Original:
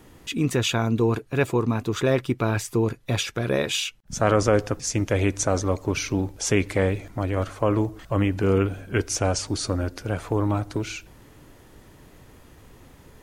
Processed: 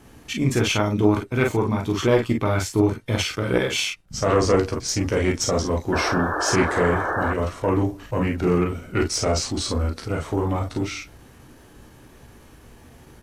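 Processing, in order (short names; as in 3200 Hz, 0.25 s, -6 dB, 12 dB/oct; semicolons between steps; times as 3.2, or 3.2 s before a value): on a send: early reflections 15 ms -6.5 dB, 35 ms -7 dB, 47 ms -4.5 dB; on the sum: added harmonics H 2 -9 dB, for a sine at -2.5 dBFS; pitch shift -1.5 st; painted sound noise, 5.92–7.34, 290–1800 Hz -25 dBFS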